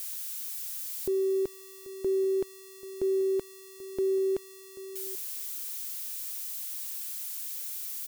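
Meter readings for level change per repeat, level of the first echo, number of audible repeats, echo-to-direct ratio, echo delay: no steady repeat, -17.0 dB, 1, -17.0 dB, 0.786 s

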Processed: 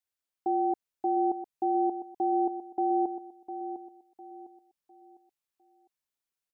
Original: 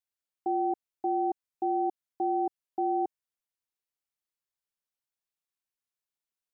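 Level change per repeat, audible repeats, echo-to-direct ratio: -9.5 dB, 3, -10.0 dB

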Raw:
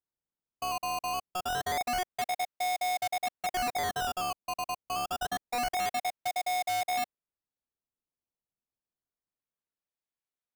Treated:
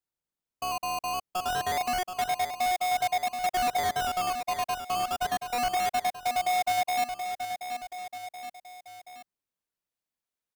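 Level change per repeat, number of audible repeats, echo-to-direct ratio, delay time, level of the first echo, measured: -4.5 dB, 3, -7.0 dB, 0.728 s, -8.5 dB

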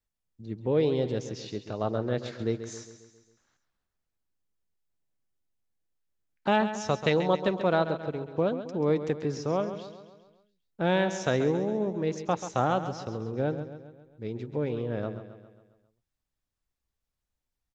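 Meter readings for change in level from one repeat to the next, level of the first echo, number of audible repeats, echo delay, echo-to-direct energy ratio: -5.5 dB, -11.0 dB, 5, 0.135 s, -9.5 dB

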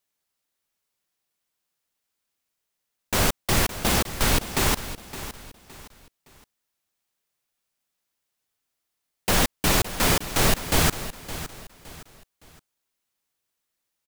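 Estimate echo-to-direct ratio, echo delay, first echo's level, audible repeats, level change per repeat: -13.0 dB, 0.565 s, -13.5 dB, 3, -9.5 dB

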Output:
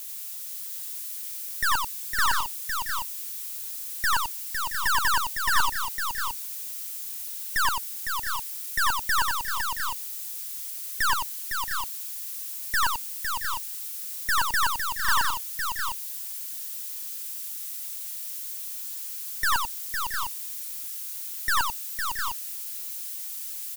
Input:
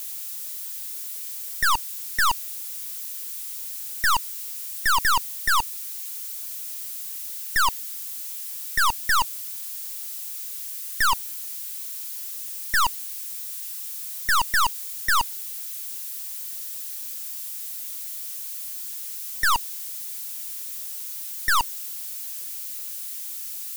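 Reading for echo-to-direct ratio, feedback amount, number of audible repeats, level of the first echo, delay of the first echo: -1.0 dB, no steady repeat, 4, -5.0 dB, 91 ms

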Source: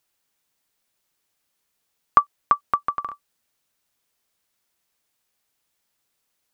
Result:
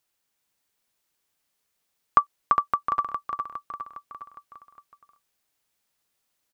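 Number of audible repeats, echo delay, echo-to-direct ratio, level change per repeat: 5, 0.409 s, -4.5 dB, -5.5 dB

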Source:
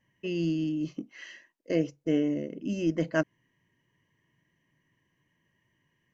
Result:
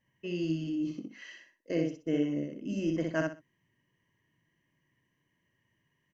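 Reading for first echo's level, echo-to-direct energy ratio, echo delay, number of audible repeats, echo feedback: -3.0 dB, -2.5 dB, 62 ms, 3, 24%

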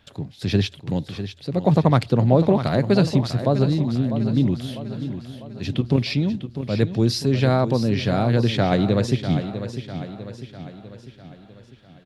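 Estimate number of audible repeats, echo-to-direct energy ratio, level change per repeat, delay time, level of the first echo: 5, -9.0 dB, -6.0 dB, 0.649 s, -10.5 dB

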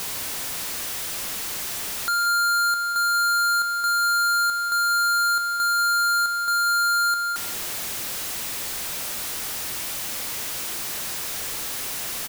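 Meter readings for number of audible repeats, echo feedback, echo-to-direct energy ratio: 1, no steady repeat, -15.5 dB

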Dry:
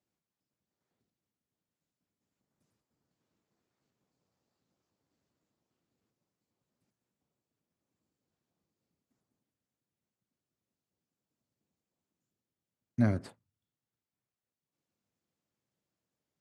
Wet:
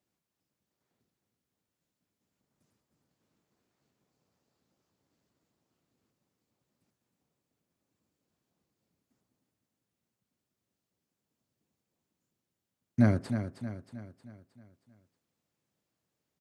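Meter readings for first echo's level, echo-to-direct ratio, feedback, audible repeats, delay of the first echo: -9.0 dB, -8.0 dB, 49%, 5, 0.314 s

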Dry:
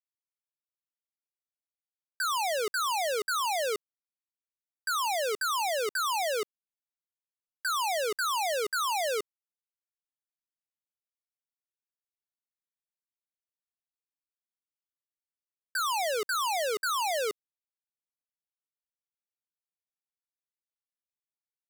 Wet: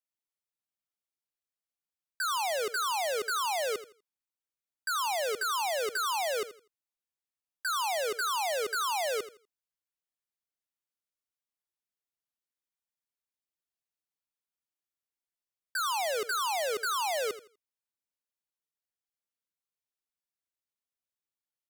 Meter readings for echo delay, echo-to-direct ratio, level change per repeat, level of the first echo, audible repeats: 82 ms, -13.5 dB, -12.0 dB, -14.0 dB, 2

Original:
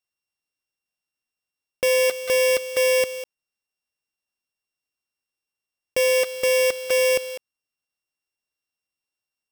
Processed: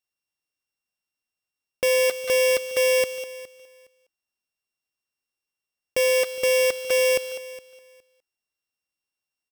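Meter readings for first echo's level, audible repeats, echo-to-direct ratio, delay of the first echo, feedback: -18.5 dB, 2, -18.5 dB, 0.414 s, 19%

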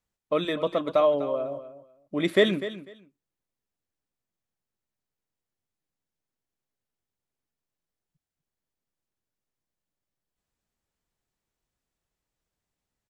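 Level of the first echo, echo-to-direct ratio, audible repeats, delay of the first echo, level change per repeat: -13.5 dB, -13.5 dB, 2, 0.248 s, -15.0 dB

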